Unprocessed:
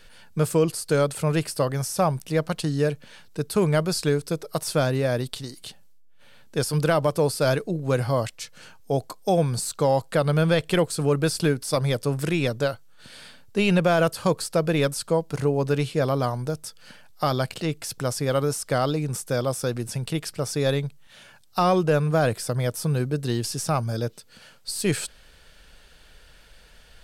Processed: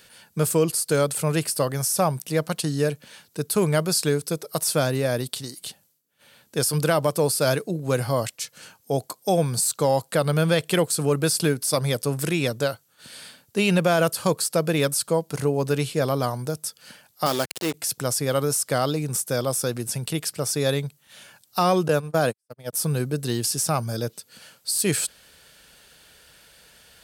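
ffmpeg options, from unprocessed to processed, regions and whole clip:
-filter_complex "[0:a]asettb=1/sr,asplit=3[a][b][c];[a]atrim=end=17.264[d];[b]atrim=start=17.26:end=17.74,asetpts=PTS-STARTPTS,afade=t=in:d=0.004:c=qsin,afade=t=out:st=0.476:d=0.004:c=qsin,lowpass=8.8k,lowshelf=f=210:t=q:w=1.5:g=-6.5,acrusher=bits=4:mix=0:aa=0.5[e];[c]atrim=start=17.736[f];[d][e]acrossfade=d=0.004:c1=hsin:c2=qsin[g];[g][f]acrossfade=d=0.004:c1=qsin:c2=hsin,asettb=1/sr,asplit=3[h][i][j];[h]atrim=end=21.884[k];[i]atrim=start=21.88:end=22.73,asetpts=PTS-STARTPTS,afade=t=in:d=0.004:c=qsin,afade=t=out:st=0.846:d=0.004:c=qsin,highpass=130,agate=range=-56dB:threshold=-24dB:ratio=16:release=100:detection=peak,equalizer=f=2.1k:t=o:w=0.35:g=-3[l];[j]atrim=start=22.726[m];[k][l]acrossfade=d=0.004:c1=hsin:c2=qsin[n];[n][m]acrossfade=d=0.004:c1=qsin:c2=hsin,highpass=100,highshelf=f=7k:g=12"

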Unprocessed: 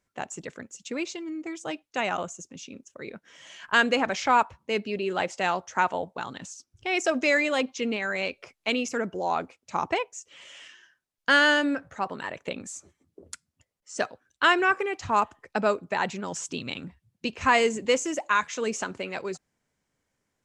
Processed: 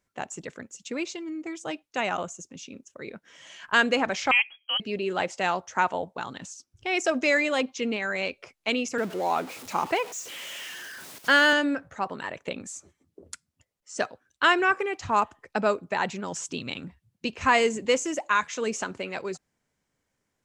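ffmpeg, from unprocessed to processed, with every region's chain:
-filter_complex "[0:a]asettb=1/sr,asplit=3[a][b][c];[a]atrim=end=4.314[d];[b]atrim=start=4.31:end=4.8,asetpts=PTS-STARTPTS,afade=t=in:d=0.004:c=qsin,afade=t=out:st=0.486:d=0.004:c=qsin,highshelf=f=2k:g=-7.5,lowpass=f=2.9k:t=q:w=0.5098,lowpass=f=2.9k:t=q:w=0.6013,lowpass=f=2.9k:t=q:w=0.9,lowpass=f=2.9k:t=q:w=2.563,afreqshift=-3400[e];[c]atrim=start=4.796[f];[d][e]acrossfade=d=0.004:c1=hsin:c2=qsin[g];[g][f]acrossfade=d=0.004:c1=qsin:c2=hsin,asettb=1/sr,asplit=3[h][i][j];[h]atrim=end=8.984[k];[i]atrim=start=8.98:end=11.53,asetpts=PTS-STARTPTS,afade=t=in:d=0.004:c=qsin,afade=t=out:st=2.546:d=0.004:c=qsin,aeval=exprs='val(0)+0.5*0.0168*sgn(val(0))':c=same,highpass=170[l];[j]atrim=start=11.526[m];[k][l]acrossfade=d=0.004:c1=hsin:c2=qsin[n];[n][m]acrossfade=d=0.004:c1=qsin:c2=hsin"

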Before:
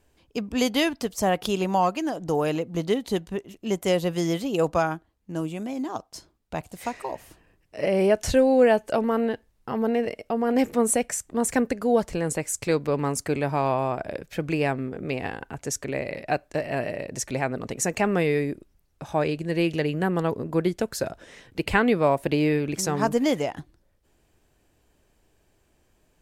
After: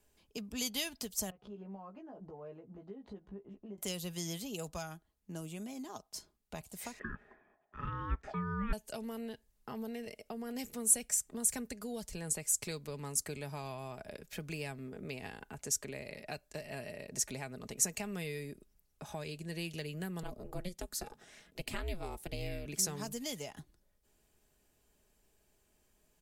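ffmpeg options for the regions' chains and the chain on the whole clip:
-filter_complex "[0:a]asettb=1/sr,asplit=3[a][b][c];[a]atrim=end=1.304[d];[b]atrim=start=1.3:end=3.78,asetpts=PTS-STARTPTS,afade=t=in:d=0.004:c=qsin,afade=t=out:st=2.476:d=0.004:c=qsin,lowpass=1.1k,acompressor=threshold=-40dB:ratio=4:attack=3.2:release=140:knee=1:detection=peak,asplit=2[e][f];[f]adelay=15,volume=-4dB[g];[e][g]amix=inputs=2:normalize=0,atrim=end_sample=109368[h];[c]atrim=start=3.776[i];[d][h]acrossfade=d=0.004:c1=hsin:c2=qsin[j];[j][i]acrossfade=d=0.004:c1=qsin:c2=hsin,asettb=1/sr,asplit=3[k][l][m];[k]atrim=end=6.994[n];[l]atrim=start=6.99:end=8.73,asetpts=PTS-STARTPTS,afade=t=in:d=0.004:c=qsin,afade=t=out:st=1.736:d=0.004:c=qsin,lowpass=f=1.1k:t=q:w=7.6,aeval=exprs='val(0)*sin(2*PI*700*n/s)':c=same[o];[m]atrim=start=8.726[p];[n][o]acrossfade=d=0.004:c1=hsin:c2=qsin[q];[q][p]acrossfade=d=0.004:c1=qsin:c2=hsin,asettb=1/sr,asplit=3[r][s][t];[r]atrim=end=20.234[u];[s]atrim=start=20.23:end=22.66,asetpts=PTS-STARTPTS,afade=t=in:d=0.004:c=qsin,afade=t=out:st=2.426:d=0.004:c=qsin,deesser=0.4,aeval=exprs='val(0)*sin(2*PI*180*n/s)':c=same[v];[t]atrim=start=22.656[w];[u][v]acrossfade=d=0.004:c1=hsin:c2=qsin[x];[x][w]acrossfade=d=0.004:c1=qsin:c2=hsin,aemphasis=mode=production:type=cd,aecho=1:1:4.8:0.36,acrossover=split=140|3000[y][z][aa];[z]acompressor=threshold=-34dB:ratio=4[ab];[y][ab][aa]amix=inputs=3:normalize=0,volume=-9dB"

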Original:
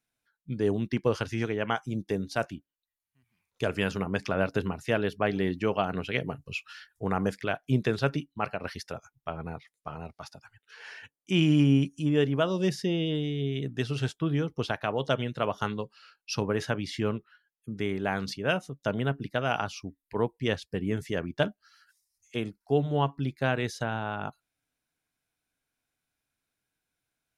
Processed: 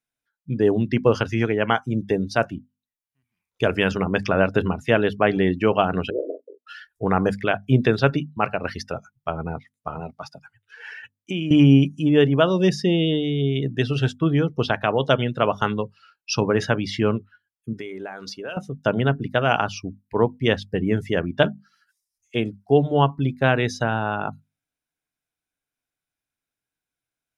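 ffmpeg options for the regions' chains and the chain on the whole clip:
-filter_complex "[0:a]asettb=1/sr,asplit=3[a][b][c];[a]atrim=end=6.104[d];[b]atrim=start=6.1:end=6.67,asetpts=PTS-STARTPTS,afade=t=in:d=0.004:c=qsin,afade=t=out:st=0.566:d=0.004:c=qsin,asuperpass=centerf=430:order=12:qfactor=1.3,asplit=2[e][f];[f]adelay=44,volume=-6.5dB[g];[e][g]amix=inputs=2:normalize=0,atrim=end_sample=25137[h];[c]atrim=start=6.666[i];[d][h]acrossfade=d=0.004:c1=hsin:c2=qsin[j];[j][i]acrossfade=d=0.004:c1=qsin:c2=hsin,asettb=1/sr,asplit=3[k][l][m];[k]atrim=end=9.984[n];[l]atrim=start=9.98:end=11.51,asetpts=PTS-STARTPTS,afade=t=in:d=0.004:c=qsin,afade=t=out:st=1.526:d=0.004:c=qsin,highpass=110,acompressor=threshold=-30dB:ratio=12:attack=3.2:release=140:knee=1:detection=peak[o];[m]atrim=start=11.506[p];[n][o]acrossfade=d=0.004:c1=hsin:c2=qsin[q];[q][p]acrossfade=d=0.004:c1=qsin:c2=hsin,asettb=1/sr,asplit=3[r][s][t];[r]atrim=end=17.734[u];[s]atrim=start=17.73:end=18.57,asetpts=PTS-STARTPTS,afade=t=in:d=0.004:c=qsin,afade=t=out:st=0.836:d=0.004:c=qsin,bass=f=250:g=-13,treble=f=4k:g=4,acompressor=threshold=-37dB:ratio=6:attack=3.2:release=140:knee=1:detection=peak,bandreject=f=120:t=h:w=4,bandreject=f=240:t=h:w=4,bandreject=f=360:t=h:w=4,bandreject=f=480:t=h:w=4,bandreject=f=600:t=h:w=4,bandreject=f=720:t=h:w=4,bandreject=f=840:t=h:w=4,bandreject=f=960:t=h:w=4,bandreject=f=1.08k:t=h:w=4,bandreject=f=1.2k:t=h:w=4,bandreject=f=1.32k:t=h:w=4,bandreject=f=1.44k:t=h:w=4[v];[t]atrim=start=18.566[w];[u][v]acrossfade=d=0.004:c1=hsin:c2=qsin[x];[x][w]acrossfade=d=0.004:c1=qsin:c2=hsin,bandreject=f=50:t=h:w=6,bandreject=f=100:t=h:w=6,bandreject=f=150:t=h:w=6,bandreject=f=200:t=h:w=6,bandreject=f=250:t=h:w=6,afftdn=nr=13:nf=-45,bandreject=f=4.3k:w=18,volume=8.5dB"

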